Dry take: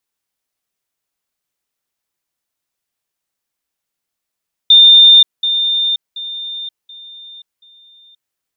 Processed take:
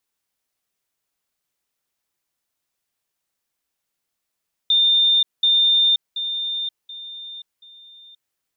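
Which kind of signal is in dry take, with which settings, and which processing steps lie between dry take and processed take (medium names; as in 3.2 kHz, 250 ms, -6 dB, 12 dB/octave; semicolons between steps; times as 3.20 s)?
level ladder 3.61 kHz -2.5 dBFS, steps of -10 dB, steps 5, 0.53 s 0.20 s
peak limiter -13 dBFS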